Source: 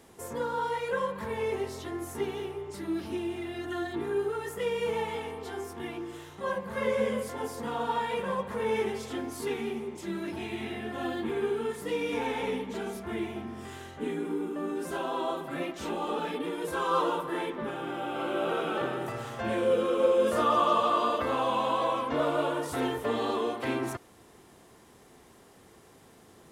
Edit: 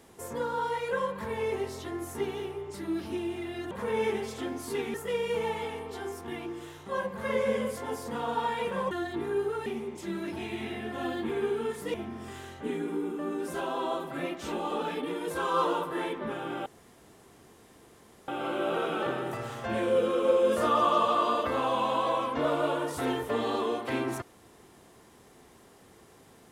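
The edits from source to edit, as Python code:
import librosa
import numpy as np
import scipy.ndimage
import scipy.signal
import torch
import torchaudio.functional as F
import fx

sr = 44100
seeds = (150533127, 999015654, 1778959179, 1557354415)

y = fx.edit(x, sr, fx.swap(start_s=3.71, length_s=0.75, other_s=8.43, other_length_s=1.23),
    fx.cut(start_s=11.94, length_s=1.37),
    fx.insert_room_tone(at_s=18.03, length_s=1.62), tone=tone)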